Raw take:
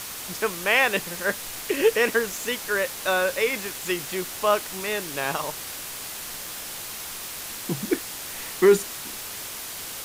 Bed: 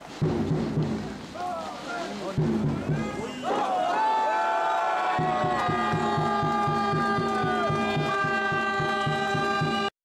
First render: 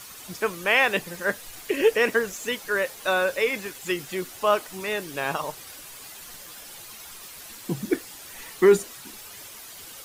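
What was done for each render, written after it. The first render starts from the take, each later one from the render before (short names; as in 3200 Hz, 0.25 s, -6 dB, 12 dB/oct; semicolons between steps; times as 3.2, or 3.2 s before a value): denoiser 10 dB, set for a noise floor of -36 dBFS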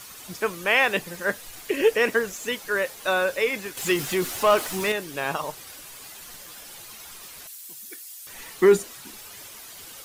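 3.77–4.92 power-law curve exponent 0.7; 7.47–8.27 differentiator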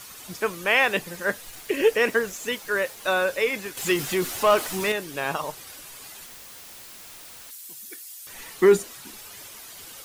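1.43–3.07 sample gate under -45 dBFS; 6.26–7.51 wrapped overs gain 38 dB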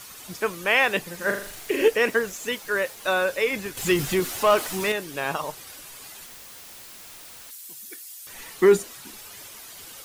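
1.16–1.88 flutter echo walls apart 7 m, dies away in 0.49 s; 3.5–4.2 low shelf 160 Hz +11.5 dB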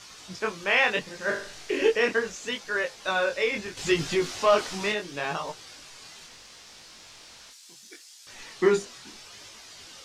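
chorus 0.73 Hz, delay 18 ms, depth 7.1 ms; synth low-pass 5500 Hz, resonance Q 1.5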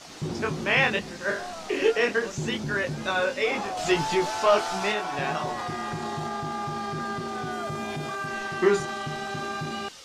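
add bed -6.5 dB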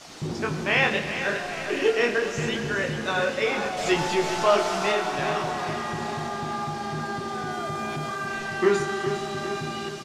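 feedback echo 0.406 s, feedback 54%, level -10 dB; Schroeder reverb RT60 2.9 s, combs from 26 ms, DRR 7.5 dB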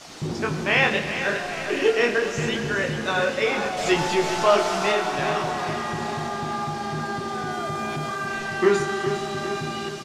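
gain +2 dB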